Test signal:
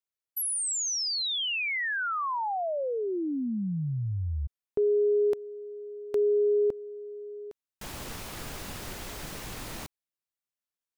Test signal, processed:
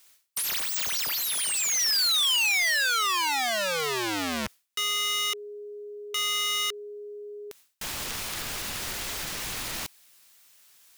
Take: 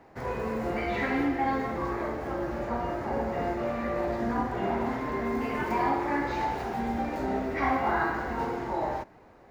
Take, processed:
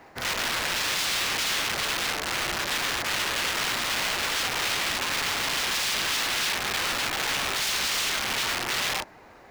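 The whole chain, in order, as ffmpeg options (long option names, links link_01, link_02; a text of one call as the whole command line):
ffmpeg -i in.wav -filter_complex "[0:a]areverse,acompressor=mode=upward:threshold=-46dB:ratio=2.5:attack=2.9:release=131:knee=2.83:detection=peak,areverse,aeval=exprs='(mod(26.6*val(0)+1,2)-1)/26.6':channel_layout=same,acrossover=split=6300[link_01][link_02];[link_02]acompressor=threshold=-42dB:ratio=4:attack=1:release=60[link_03];[link_01][link_03]amix=inputs=2:normalize=0,tiltshelf=frequency=1100:gain=-6,volume=4.5dB" out.wav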